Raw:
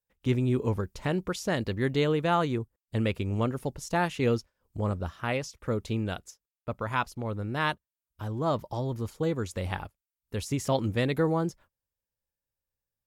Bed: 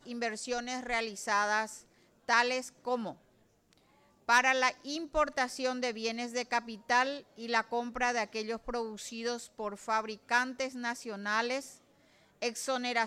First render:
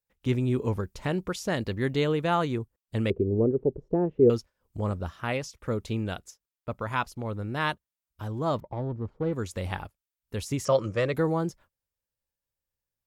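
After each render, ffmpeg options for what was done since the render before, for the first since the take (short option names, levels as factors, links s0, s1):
-filter_complex "[0:a]asettb=1/sr,asplit=3[s0][s1][s2];[s0]atrim=end=3.104[s3];[s1]atrim=start=3.1:end=4.3,asetpts=PTS-STARTPTS,afade=t=in:d=0.004:c=qsin,afade=t=out:st=1.196:d=0.004:c=qsin,lowpass=f=410:t=q:w=4.6[s4];[s2]atrim=start=4.296[s5];[s3][s4]acrossfade=d=0.004:c1=hsin:c2=qsin[s6];[s6][s5]acrossfade=d=0.004:c1=qsin:c2=hsin,asettb=1/sr,asplit=3[s7][s8][s9];[s7]atrim=end=8.604[s10];[s8]atrim=start=8.6:end=9.33,asetpts=PTS-STARTPTS,afade=t=in:d=0.004:c=qsin,afade=t=out:st=0.726:d=0.004:c=qsin,adynamicsmooth=sensitivity=1:basefreq=930[s11];[s9]atrim=start=9.326[s12];[s10][s11]acrossfade=d=0.004:c1=hsin:c2=qsin[s13];[s13][s12]acrossfade=d=0.004:c1=qsin:c2=hsin,asettb=1/sr,asplit=3[s14][s15][s16];[s14]atrim=end=10.654[s17];[s15]atrim=start=10.65:end=11.14,asetpts=PTS-STARTPTS,afade=t=in:d=0.004:c=qsin,afade=t=out:st=0.486:d=0.004:c=qsin,highpass=110,equalizer=f=250:t=q:w=4:g=-10,equalizer=f=560:t=q:w=4:g=9,equalizer=f=810:t=q:w=4:g=-7,equalizer=f=1200:t=q:w=4:g=10,equalizer=f=3700:t=q:w=4:g=-7,equalizer=f=5700:t=q:w=4:g=9,lowpass=f=8000:w=0.5412,lowpass=f=8000:w=1.3066[s18];[s16]atrim=start=11.136[s19];[s17][s18]acrossfade=d=0.004:c1=hsin:c2=qsin[s20];[s20][s19]acrossfade=d=0.004:c1=qsin:c2=hsin"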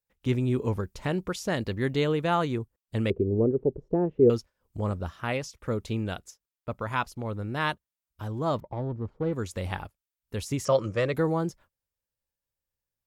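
-af anull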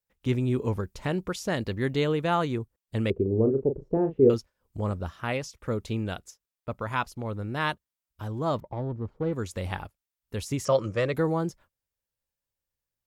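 -filter_complex "[0:a]asettb=1/sr,asplit=3[s0][s1][s2];[s0]atrim=end=3.224[s3];[s1]atrim=start=3.22:end=4.34,asetpts=PTS-STARTPTS,afade=t=in:d=0.004:c=qsin,afade=t=out:st=1.116:d=0.004:c=qsin,asplit=2[s4][s5];[s5]adelay=37,volume=0.398[s6];[s4][s6]amix=inputs=2:normalize=0,atrim=end_sample=49392[s7];[s2]atrim=start=4.336[s8];[s3][s7]acrossfade=d=0.004:c1=hsin:c2=qsin[s9];[s9][s8]acrossfade=d=0.004:c1=qsin:c2=hsin"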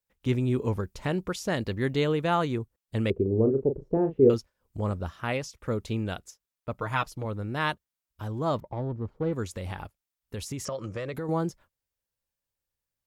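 -filter_complex "[0:a]asettb=1/sr,asplit=3[s0][s1][s2];[s0]atrim=end=6.774[s3];[s1]atrim=start=6.77:end=7.25,asetpts=PTS-STARTPTS,afade=t=in:d=0.004:c=qsin,afade=t=out:st=0.476:d=0.004:c=qsin,aecho=1:1:6.5:0.65,atrim=end_sample=21168[s4];[s2]atrim=start=7.246[s5];[s3][s4]acrossfade=d=0.004:c1=hsin:c2=qsin[s6];[s6][s5]acrossfade=d=0.004:c1=qsin:c2=hsin,asettb=1/sr,asplit=3[s7][s8][s9];[s7]atrim=end=9.454[s10];[s8]atrim=start=9.45:end=11.29,asetpts=PTS-STARTPTS,afade=t=in:d=0.004:c=qsin,afade=t=out:st=1.836:d=0.004:c=qsin,acompressor=threshold=0.0316:ratio=6:attack=3.2:release=140:knee=1:detection=peak[s11];[s9]atrim=start=11.286[s12];[s10][s11]acrossfade=d=0.004:c1=hsin:c2=qsin[s13];[s13][s12]acrossfade=d=0.004:c1=qsin:c2=hsin"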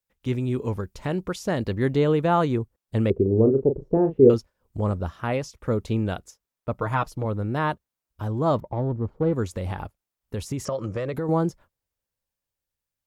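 -filter_complex "[0:a]acrossover=split=1300[s0][s1];[s0]dynaudnorm=f=330:g=9:m=2[s2];[s1]alimiter=level_in=1.33:limit=0.0631:level=0:latency=1:release=29,volume=0.75[s3];[s2][s3]amix=inputs=2:normalize=0"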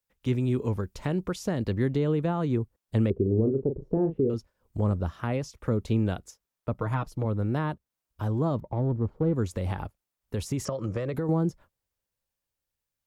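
-filter_complex "[0:a]alimiter=limit=0.2:level=0:latency=1:release=233,acrossover=split=350[s0][s1];[s1]acompressor=threshold=0.02:ratio=2.5[s2];[s0][s2]amix=inputs=2:normalize=0"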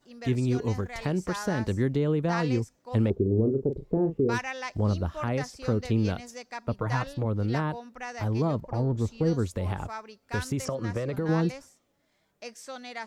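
-filter_complex "[1:a]volume=0.422[s0];[0:a][s0]amix=inputs=2:normalize=0"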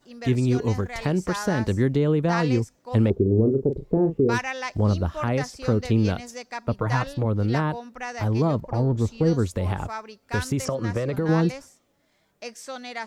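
-af "volume=1.68"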